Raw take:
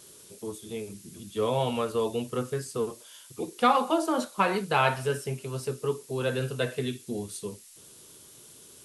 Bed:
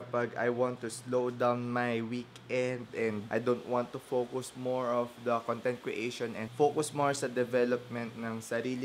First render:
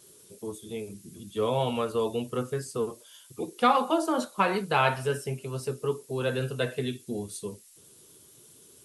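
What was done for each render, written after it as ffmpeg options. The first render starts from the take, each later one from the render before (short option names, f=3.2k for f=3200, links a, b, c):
-af "afftdn=nr=6:nf=-52"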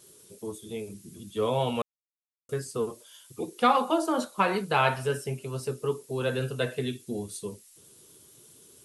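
-filter_complex "[0:a]asplit=3[a][b][c];[a]atrim=end=1.82,asetpts=PTS-STARTPTS,afade=t=out:st=1.816:d=0.004:c=hsin[d];[b]atrim=start=1.82:end=2.49,asetpts=PTS-STARTPTS,volume=0[e];[c]atrim=start=2.49,asetpts=PTS-STARTPTS,afade=t=in:d=0.004:c=hsin[f];[d][e][f]concat=n=3:v=0:a=1"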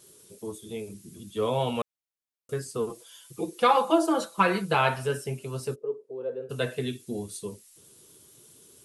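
-filter_complex "[0:a]asettb=1/sr,asplit=3[a][b][c];[a]atrim=end=2.894[d];[b]atrim=start=2.89:end=4.75,asetpts=PTS-STARTPTS,afade=t=in:d=0.004:c=qsin,afade=t=out:st=1.856:d=0.004:c=qsin,aecho=1:1:6:0.68,atrim=end_sample=82026[e];[c]atrim=start=4.746[f];[d][e]acrossfade=d=0.004:c1=hsin:c2=qsin[g];[g][f]acrossfade=d=0.004:c1=qsin:c2=hsin,asplit=3[h][i][j];[h]afade=t=out:st=5.74:d=0.02[k];[i]bandpass=f=470:t=q:w=3.7,afade=t=in:st=5.74:d=0.02,afade=t=out:st=6.49:d=0.02[l];[j]afade=t=in:st=6.49:d=0.02[m];[k][l][m]amix=inputs=3:normalize=0"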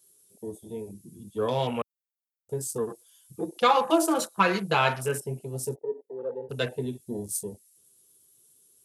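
-af "aemphasis=mode=production:type=50fm,afwtdn=0.0112"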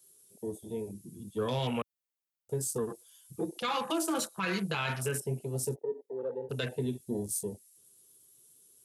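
-filter_complex "[0:a]acrossover=split=320|1300[a][b][c];[b]acompressor=threshold=-34dB:ratio=6[d];[a][d][c]amix=inputs=3:normalize=0,alimiter=limit=-22.5dB:level=0:latency=1:release=31"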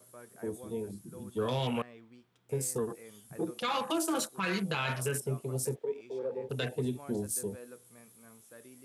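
-filter_complex "[1:a]volume=-20dB[a];[0:a][a]amix=inputs=2:normalize=0"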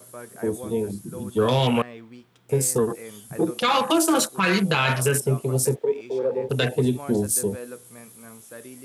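-af "volume=11.5dB"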